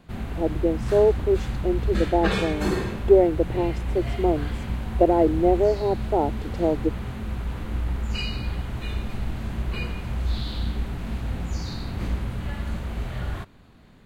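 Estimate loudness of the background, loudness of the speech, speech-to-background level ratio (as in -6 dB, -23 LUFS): -30.0 LUFS, -23.5 LUFS, 6.5 dB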